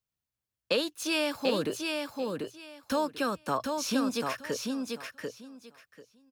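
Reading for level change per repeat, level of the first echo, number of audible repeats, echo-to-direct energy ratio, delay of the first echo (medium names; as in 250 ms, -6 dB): -15.0 dB, -4.0 dB, 3, -4.0 dB, 741 ms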